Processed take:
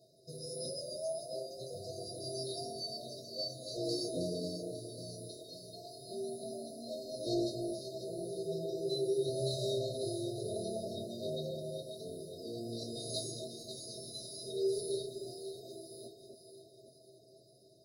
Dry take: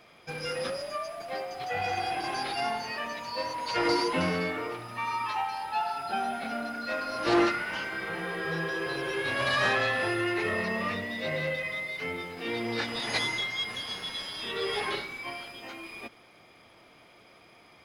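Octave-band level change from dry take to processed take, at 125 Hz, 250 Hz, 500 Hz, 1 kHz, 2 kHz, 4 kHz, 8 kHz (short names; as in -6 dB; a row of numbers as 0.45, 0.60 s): -3.5 dB, -7.5 dB, -4.0 dB, under -20 dB, under -40 dB, -8.5 dB, 0.0 dB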